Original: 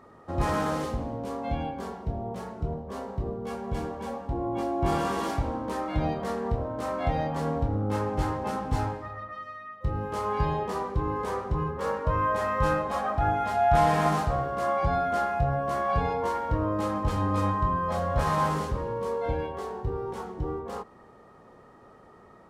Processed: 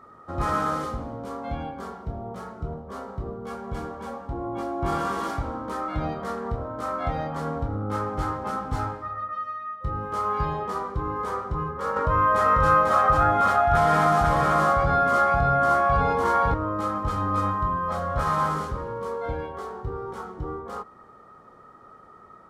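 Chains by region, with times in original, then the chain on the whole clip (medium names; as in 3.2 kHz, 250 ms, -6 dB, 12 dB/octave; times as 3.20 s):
11.96–16.54 s: delay 494 ms -3.5 dB + level flattener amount 50%
whole clip: peaking EQ 1.3 kHz +12.5 dB 0.31 oct; band-stop 2.7 kHz, Q 13; trim -1.5 dB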